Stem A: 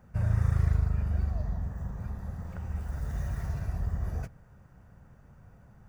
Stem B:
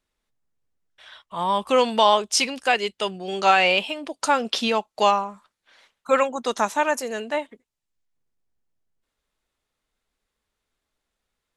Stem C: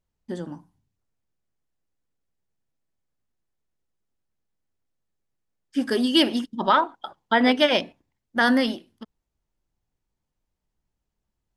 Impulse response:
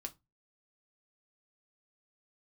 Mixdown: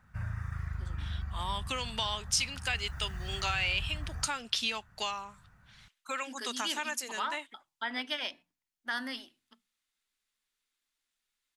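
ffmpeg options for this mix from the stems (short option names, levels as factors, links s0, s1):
-filter_complex "[0:a]alimiter=limit=0.0841:level=0:latency=1:release=120,equalizer=f=1500:t=o:w=2.2:g=12,volume=0.473[s0];[1:a]equalizer=f=840:t=o:w=1.7:g=-6.5,volume=0.944[s1];[2:a]adelay=500,volume=0.266,asplit=2[s2][s3];[s3]volume=0.355[s4];[s1][s2]amix=inputs=2:normalize=0,highpass=380,acompressor=threshold=0.0501:ratio=4,volume=1[s5];[3:a]atrim=start_sample=2205[s6];[s4][s6]afir=irnorm=-1:irlink=0[s7];[s0][s5][s7]amix=inputs=3:normalize=0,equalizer=f=500:w=0.85:g=-13"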